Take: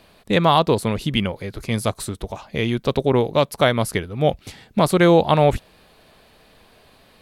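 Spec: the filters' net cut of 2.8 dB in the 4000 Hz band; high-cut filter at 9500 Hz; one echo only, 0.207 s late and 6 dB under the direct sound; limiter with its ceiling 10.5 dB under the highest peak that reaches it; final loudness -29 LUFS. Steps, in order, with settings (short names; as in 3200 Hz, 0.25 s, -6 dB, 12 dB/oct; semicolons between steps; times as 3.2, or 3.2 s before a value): LPF 9500 Hz; bell 4000 Hz -3.5 dB; limiter -14 dBFS; echo 0.207 s -6 dB; gain -3.5 dB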